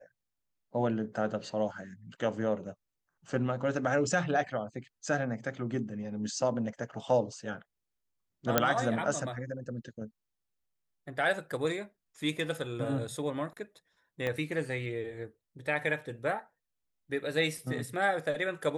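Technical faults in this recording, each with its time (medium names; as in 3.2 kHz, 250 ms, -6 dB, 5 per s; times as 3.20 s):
8.58 s: pop -7 dBFS
14.27 s: pop -20 dBFS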